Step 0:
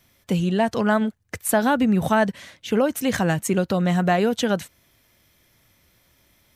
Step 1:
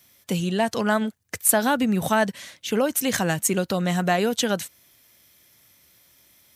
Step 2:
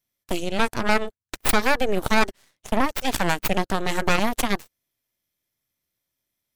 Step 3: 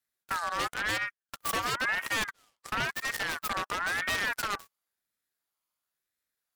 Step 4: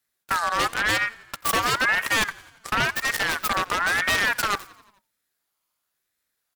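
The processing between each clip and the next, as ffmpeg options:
-af "highpass=f=120:p=1,highshelf=f=3.6k:g=10,volume=-2dB"
-filter_complex "[0:a]asplit=2[a][b];[b]adynamicsmooth=sensitivity=6.5:basefreq=1.2k,volume=-8dB[c];[a][c]amix=inputs=2:normalize=0,aeval=exprs='0.708*(cos(1*acos(clip(val(0)/0.708,-1,1)))-cos(1*PI/2))+0.141*(cos(3*acos(clip(val(0)/0.708,-1,1)))-cos(3*PI/2))+0.0158*(cos(5*acos(clip(val(0)/0.708,-1,1)))-cos(5*PI/2))+0.282*(cos(6*acos(clip(val(0)/0.708,-1,1)))-cos(6*PI/2))+0.0631*(cos(7*acos(clip(val(0)/0.708,-1,1)))-cos(7*PI/2))':c=same,volume=-5dB"
-af "aeval=exprs='0.133*(abs(mod(val(0)/0.133+3,4)-2)-1)':c=same,aeval=exprs='val(0)*sin(2*PI*1500*n/s+1500*0.25/0.97*sin(2*PI*0.97*n/s))':c=same,volume=-3dB"
-filter_complex "[0:a]asplit=6[a][b][c][d][e][f];[b]adelay=87,afreqshift=-46,volume=-22dB[g];[c]adelay=174,afreqshift=-92,volume=-26.3dB[h];[d]adelay=261,afreqshift=-138,volume=-30.6dB[i];[e]adelay=348,afreqshift=-184,volume=-34.9dB[j];[f]adelay=435,afreqshift=-230,volume=-39.2dB[k];[a][g][h][i][j][k]amix=inputs=6:normalize=0,volume=8dB"

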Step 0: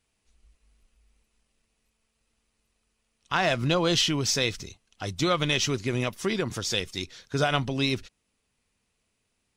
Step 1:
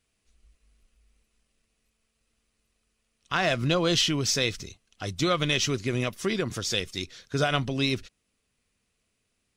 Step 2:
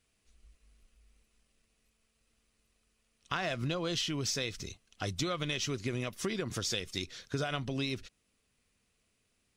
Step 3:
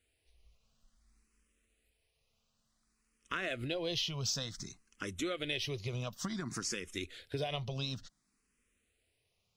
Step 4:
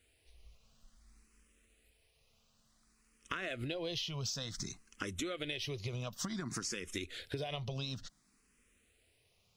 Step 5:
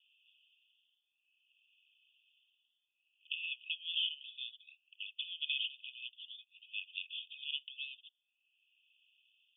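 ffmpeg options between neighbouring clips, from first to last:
-af "equalizer=f=880:t=o:w=0.31:g=-6.5"
-af "acompressor=threshold=-31dB:ratio=6"
-filter_complex "[0:a]asplit=2[a][b];[b]afreqshift=0.56[c];[a][c]amix=inputs=2:normalize=1"
-af "acompressor=threshold=-43dB:ratio=6,volume=6.5dB"
-af "asuperpass=centerf=3000:order=20:qfactor=3,volume=7.5dB"

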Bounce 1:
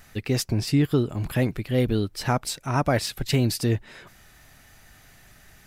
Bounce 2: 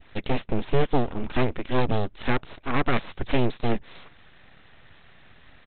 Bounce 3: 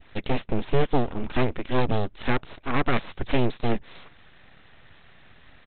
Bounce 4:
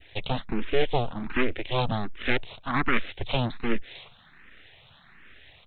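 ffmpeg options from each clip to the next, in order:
-af "adynamicequalizer=threshold=0.01:dfrequency=1500:dqfactor=0.79:tfrequency=1500:tqfactor=0.79:attack=5:release=100:ratio=0.375:range=2:mode=cutabove:tftype=bell,aresample=8000,aeval=exprs='abs(val(0))':c=same,aresample=44100,volume=2.5dB"
-af anull
-filter_complex "[0:a]acrossover=split=1700[a][b];[b]acontrast=82[c];[a][c]amix=inputs=2:normalize=0,asplit=2[d][e];[e]afreqshift=1.3[f];[d][f]amix=inputs=2:normalize=1"

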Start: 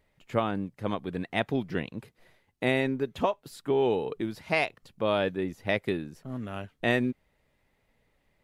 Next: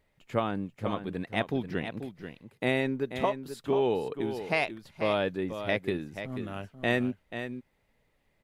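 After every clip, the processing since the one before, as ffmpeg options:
-af "aecho=1:1:486:0.335,volume=-1.5dB"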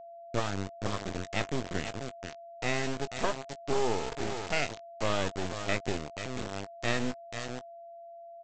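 -filter_complex "[0:a]aresample=16000,acrusher=bits=3:dc=4:mix=0:aa=0.000001,aresample=44100,asplit=2[a][b];[b]adelay=20,volume=-12.5dB[c];[a][c]amix=inputs=2:normalize=0,aeval=exprs='val(0)+0.00562*sin(2*PI*680*n/s)':c=same"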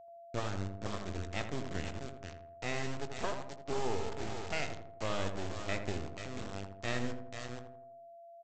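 -filter_complex "[0:a]equalizer=f=86:t=o:w=0.26:g=10.5,asplit=2[a][b];[b]adelay=82,lowpass=f=1.3k:p=1,volume=-6dB,asplit=2[c][d];[d]adelay=82,lowpass=f=1.3k:p=1,volume=0.53,asplit=2[e][f];[f]adelay=82,lowpass=f=1.3k:p=1,volume=0.53,asplit=2[g][h];[h]adelay=82,lowpass=f=1.3k:p=1,volume=0.53,asplit=2[i][j];[j]adelay=82,lowpass=f=1.3k:p=1,volume=0.53,asplit=2[k][l];[l]adelay=82,lowpass=f=1.3k:p=1,volume=0.53,asplit=2[m][n];[n]adelay=82,lowpass=f=1.3k:p=1,volume=0.53[o];[c][e][g][i][k][m][o]amix=inputs=7:normalize=0[p];[a][p]amix=inputs=2:normalize=0,volume=-6.5dB"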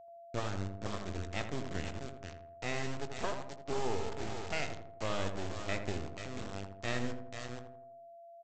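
-af anull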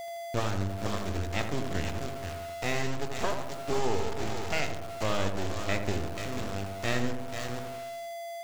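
-af "aeval=exprs='val(0)+0.5*0.00794*sgn(val(0))':c=same,volume=5.5dB"

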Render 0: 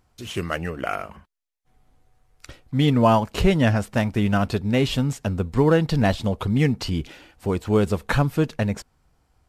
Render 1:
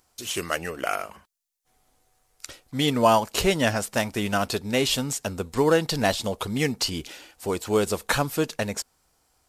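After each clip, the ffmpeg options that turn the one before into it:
-af "bass=f=250:g=-11,treble=f=4k:g=11"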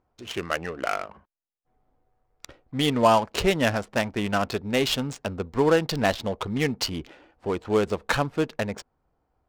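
-af "adynamicsmooth=sensitivity=3.5:basefreq=1.1k"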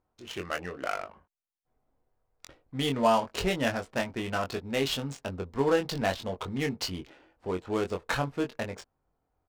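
-filter_complex "[0:a]asplit=2[a][b];[b]adelay=22,volume=-5dB[c];[a][c]amix=inputs=2:normalize=0,volume=-6.5dB"

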